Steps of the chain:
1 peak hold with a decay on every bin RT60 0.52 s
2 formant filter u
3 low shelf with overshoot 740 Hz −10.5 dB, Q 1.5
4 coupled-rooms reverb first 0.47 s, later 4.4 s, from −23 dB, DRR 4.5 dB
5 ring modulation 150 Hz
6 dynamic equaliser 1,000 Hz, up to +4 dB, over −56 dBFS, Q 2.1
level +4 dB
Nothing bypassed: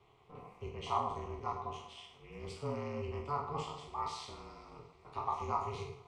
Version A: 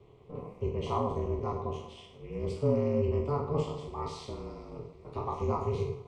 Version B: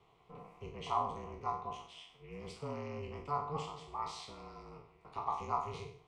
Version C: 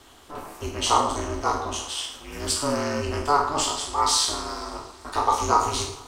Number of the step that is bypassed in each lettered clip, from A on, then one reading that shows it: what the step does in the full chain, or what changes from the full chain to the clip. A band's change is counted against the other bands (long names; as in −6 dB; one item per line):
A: 3, 250 Hz band +12.5 dB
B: 4, change in crest factor +2.0 dB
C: 2, 8 kHz band +16.5 dB